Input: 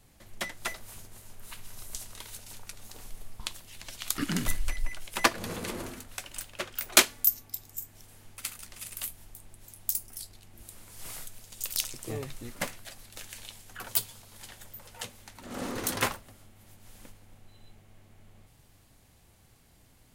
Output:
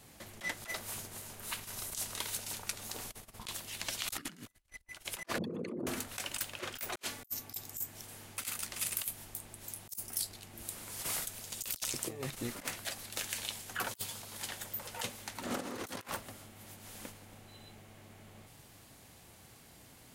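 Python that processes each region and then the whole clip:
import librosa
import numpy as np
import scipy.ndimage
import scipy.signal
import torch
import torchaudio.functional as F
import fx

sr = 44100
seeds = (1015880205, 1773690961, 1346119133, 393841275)

y = fx.chain(x, sr, fx.envelope_sharpen(power=3.0),
    fx.highpass(hz=130.0, slope=24),
    fx.over_compress(threshold_db=-44.0, ratio=-1.0), at=(5.38, 5.87))
y = fx.over_compress(y, sr, threshold_db=-39.0, ratio=-0.5)
y = fx.highpass(y, sr, hz=160.0, slope=6)
y = y * librosa.db_to_amplitude(1.0)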